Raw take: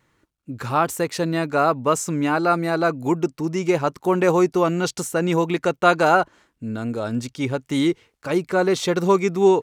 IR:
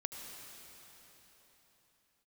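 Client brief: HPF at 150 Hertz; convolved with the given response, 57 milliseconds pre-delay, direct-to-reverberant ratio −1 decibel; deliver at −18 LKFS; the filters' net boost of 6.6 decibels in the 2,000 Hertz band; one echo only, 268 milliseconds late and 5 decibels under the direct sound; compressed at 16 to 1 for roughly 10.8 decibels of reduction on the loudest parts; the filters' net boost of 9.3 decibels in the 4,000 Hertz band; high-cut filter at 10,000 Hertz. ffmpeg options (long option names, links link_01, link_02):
-filter_complex "[0:a]highpass=150,lowpass=10000,equalizer=frequency=2000:width_type=o:gain=7.5,equalizer=frequency=4000:width_type=o:gain=9,acompressor=threshold=-18dB:ratio=16,aecho=1:1:268:0.562,asplit=2[link_01][link_02];[1:a]atrim=start_sample=2205,adelay=57[link_03];[link_02][link_03]afir=irnorm=-1:irlink=0,volume=1.5dB[link_04];[link_01][link_04]amix=inputs=2:normalize=0,volume=1.5dB"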